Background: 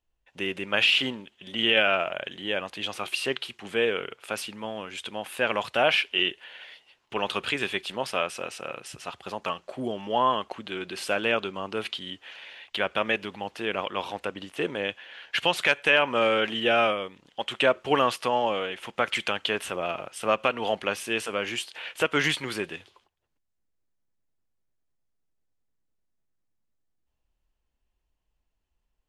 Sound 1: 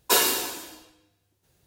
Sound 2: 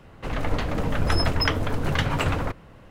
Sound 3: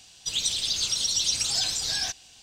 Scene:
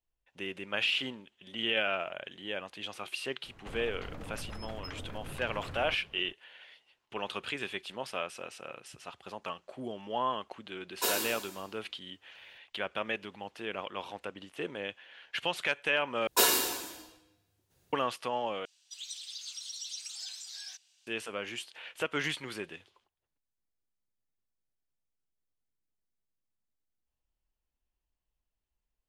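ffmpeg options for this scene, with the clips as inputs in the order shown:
ffmpeg -i bed.wav -i cue0.wav -i cue1.wav -i cue2.wav -filter_complex "[1:a]asplit=2[link_01][link_02];[0:a]volume=-8.5dB[link_03];[2:a]acompressor=threshold=-29dB:ratio=6:attack=3.2:release=140:knee=1:detection=peak[link_04];[3:a]highpass=1400[link_05];[link_03]asplit=3[link_06][link_07][link_08];[link_06]atrim=end=16.274[link_09];[link_02]atrim=end=1.66,asetpts=PTS-STARTPTS,volume=-4dB[link_10];[link_07]atrim=start=17.926:end=18.654[link_11];[link_05]atrim=end=2.42,asetpts=PTS-STARTPTS,volume=-16dB[link_12];[link_08]atrim=start=21.066[link_13];[link_04]atrim=end=2.9,asetpts=PTS-STARTPTS,volume=-10dB,afade=type=in:duration=0.004:curve=hsin,afade=type=out:start_time=2.896:duration=0.004:curve=hsin,adelay=3430[link_14];[link_01]atrim=end=1.66,asetpts=PTS-STARTPTS,volume=-10.5dB,afade=type=in:duration=0.004:curve=hsin,afade=type=out:start_time=1.656:duration=0.004:curve=hsin,adelay=10920[link_15];[link_09][link_10]acrossfade=duration=0.004:curve1=hsin:curve2=hsin[link_16];[link_16][link_11]acrossfade=duration=0.004:curve1=hsin:curve2=hsin[link_17];[link_17][link_12]acrossfade=duration=0.004:curve1=hsin:curve2=hsin[link_18];[link_18][link_13]acrossfade=duration=0.004:curve1=hsin:curve2=hsin[link_19];[link_19][link_14][link_15]amix=inputs=3:normalize=0" out.wav

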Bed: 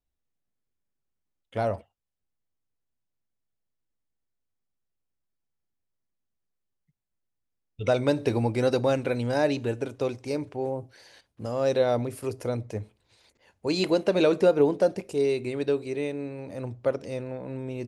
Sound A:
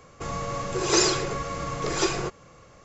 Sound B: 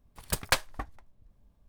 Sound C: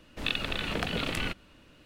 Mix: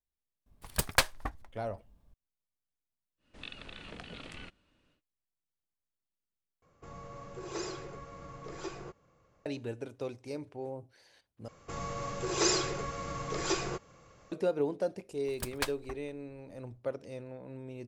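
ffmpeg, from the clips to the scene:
ffmpeg -i bed.wav -i cue0.wav -i cue1.wav -i cue2.wav -filter_complex "[2:a]asplit=2[link_01][link_02];[1:a]asplit=2[link_03][link_04];[0:a]volume=-10dB[link_05];[3:a]aresample=22050,aresample=44100[link_06];[link_03]highshelf=frequency=2300:gain=-8.5[link_07];[link_05]asplit=3[link_08][link_09][link_10];[link_08]atrim=end=6.624[link_11];[link_07]atrim=end=2.84,asetpts=PTS-STARTPTS,volume=-15dB[link_12];[link_09]atrim=start=9.456:end=11.484[link_13];[link_04]atrim=end=2.84,asetpts=PTS-STARTPTS,volume=-7dB[link_14];[link_10]atrim=start=14.316[link_15];[link_01]atrim=end=1.68,asetpts=PTS-STARTPTS,afade=type=in:duration=0.004:curve=hsin,afade=type=out:start_time=1.676:duration=0.004:curve=hsin,adelay=460[link_16];[link_06]atrim=end=1.85,asetpts=PTS-STARTPTS,volume=-15dB,afade=type=in:duration=0.1,afade=type=out:start_time=1.75:duration=0.1,adelay=139797S[link_17];[link_02]atrim=end=1.68,asetpts=PTS-STARTPTS,volume=-8.5dB,afade=type=in:duration=0.004:curve=hsin,afade=type=out:start_time=1.676:duration=0.004:curve=hsin,adelay=15100[link_18];[link_11][link_12]acrossfade=duration=0.004:curve1=hsin:curve2=hsin[link_19];[link_19][link_13]acrossfade=duration=0.004:curve1=hsin:curve2=hsin[link_20];[link_20][link_14]acrossfade=duration=0.004:curve1=hsin:curve2=hsin[link_21];[link_21][link_15]acrossfade=duration=0.004:curve1=hsin:curve2=hsin[link_22];[link_22][link_16][link_17][link_18]amix=inputs=4:normalize=0" out.wav

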